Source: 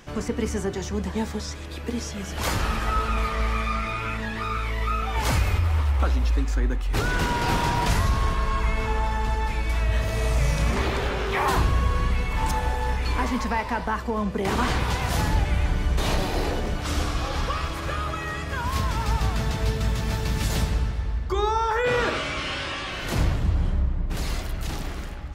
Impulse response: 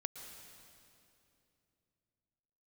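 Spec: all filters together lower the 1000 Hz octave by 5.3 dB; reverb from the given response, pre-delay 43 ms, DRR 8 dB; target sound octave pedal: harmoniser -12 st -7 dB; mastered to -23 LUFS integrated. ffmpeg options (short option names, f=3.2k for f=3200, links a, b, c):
-filter_complex "[0:a]equalizer=f=1k:t=o:g=-6.5,asplit=2[a][b];[1:a]atrim=start_sample=2205,adelay=43[c];[b][c]afir=irnorm=-1:irlink=0,volume=-6.5dB[d];[a][d]amix=inputs=2:normalize=0,asplit=2[e][f];[f]asetrate=22050,aresample=44100,atempo=2,volume=-7dB[g];[e][g]amix=inputs=2:normalize=0,volume=3dB"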